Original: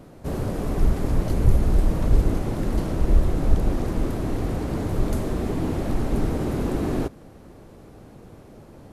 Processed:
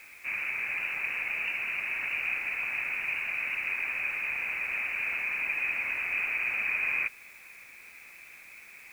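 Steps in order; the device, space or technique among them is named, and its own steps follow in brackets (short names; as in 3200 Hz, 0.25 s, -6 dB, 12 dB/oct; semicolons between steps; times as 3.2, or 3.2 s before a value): scrambled radio voice (BPF 330–3100 Hz; inverted band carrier 2800 Hz; white noise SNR 26 dB)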